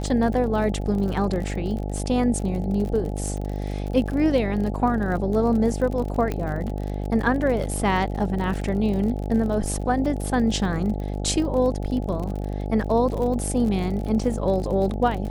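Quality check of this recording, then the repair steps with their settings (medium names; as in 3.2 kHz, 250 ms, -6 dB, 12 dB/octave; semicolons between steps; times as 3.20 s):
buzz 50 Hz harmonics 17 -28 dBFS
crackle 45 per s -30 dBFS
6.32 s: pop -14 dBFS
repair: de-click; de-hum 50 Hz, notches 17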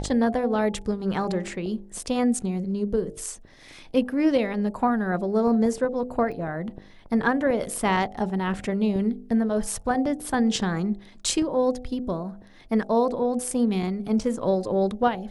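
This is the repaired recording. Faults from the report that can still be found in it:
6.32 s: pop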